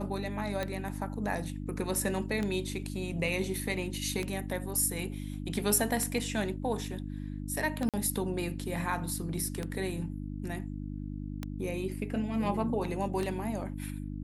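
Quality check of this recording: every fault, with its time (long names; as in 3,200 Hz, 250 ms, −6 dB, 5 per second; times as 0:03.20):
mains hum 50 Hz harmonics 6 −38 dBFS
scratch tick 33 1/3 rpm −19 dBFS
0:07.89–0:07.94: drop-out 47 ms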